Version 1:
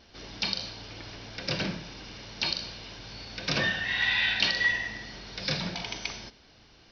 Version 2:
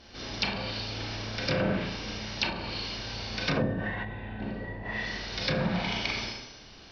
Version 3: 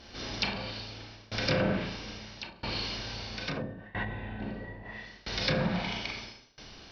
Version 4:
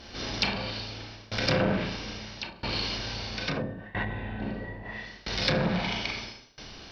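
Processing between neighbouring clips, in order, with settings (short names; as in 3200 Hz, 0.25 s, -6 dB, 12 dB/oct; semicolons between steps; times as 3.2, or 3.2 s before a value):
Schroeder reverb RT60 0.95 s, combs from 29 ms, DRR -2 dB; treble ducked by the level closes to 440 Hz, closed at -20 dBFS; gain +2.5 dB
tremolo saw down 0.76 Hz, depth 95%; gain +2 dB
core saturation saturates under 810 Hz; gain +4.5 dB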